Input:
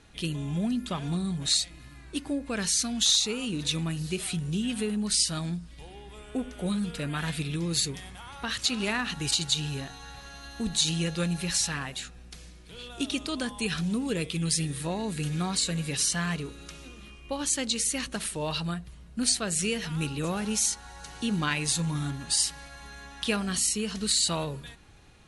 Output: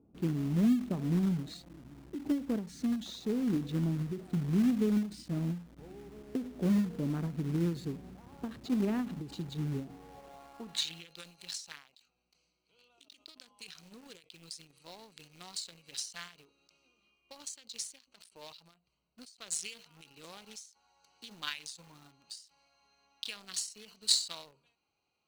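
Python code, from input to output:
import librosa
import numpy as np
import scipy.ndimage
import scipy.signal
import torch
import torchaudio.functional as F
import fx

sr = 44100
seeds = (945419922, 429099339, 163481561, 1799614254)

p1 = fx.wiener(x, sr, points=25)
p2 = fx.filter_sweep_bandpass(p1, sr, from_hz=260.0, to_hz=5000.0, start_s=9.88, end_s=11.23, q=1.3)
p3 = fx.quant_companded(p2, sr, bits=4)
p4 = p2 + F.gain(torch.from_numpy(p3), -5.0).numpy()
y = fx.end_taper(p4, sr, db_per_s=140.0)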